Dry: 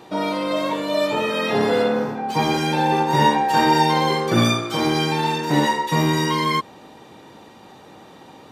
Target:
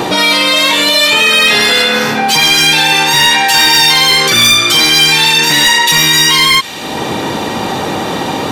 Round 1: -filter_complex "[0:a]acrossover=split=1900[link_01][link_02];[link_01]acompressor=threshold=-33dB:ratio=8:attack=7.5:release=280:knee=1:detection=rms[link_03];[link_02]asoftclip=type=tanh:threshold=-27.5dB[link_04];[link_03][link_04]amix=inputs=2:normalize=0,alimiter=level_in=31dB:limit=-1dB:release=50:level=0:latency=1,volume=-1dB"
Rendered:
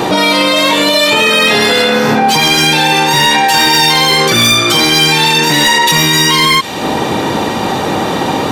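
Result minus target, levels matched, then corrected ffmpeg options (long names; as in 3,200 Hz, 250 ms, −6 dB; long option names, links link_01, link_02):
downward compressor: peak gain reduction −8 dB
-filter_complex "[0:a]acrossover=split=1900[link_01][link_02];[link_01]acompressor=threshold=-42dB:ratio=8:attack=7.5:release=280:knee=1:detection=rms[link_03];[link_02]asoftclip=type=tanh:threshold=-27.5dB[link_04];[link_03][link_04]amix=inputs=2:normalize=0,alimiter=level_in=31dB:limit=-1dB:release=50:level=0:latency=1,volume=-1dB"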